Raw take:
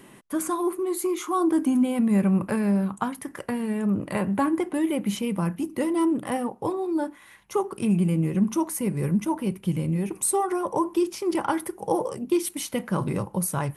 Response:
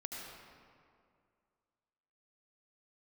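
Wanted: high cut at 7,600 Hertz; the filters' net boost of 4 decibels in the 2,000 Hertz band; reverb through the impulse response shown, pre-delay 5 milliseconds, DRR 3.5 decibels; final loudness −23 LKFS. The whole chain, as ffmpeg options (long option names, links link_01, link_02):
-filter_complex "[0:a]lowpass=7600,equalizer=frequency=2000:width_type=o:gain=5,asplit=2[link_01][link_02];[1:a]atrim=start_sample=2205,adelay=5[link_03];[link_02][link_03]afir=irnorm=-1:irlink=0,volume=-3dB[link_04];[link_01][link_04]amix=inputs=2:normalize=0,volume=0.5dB"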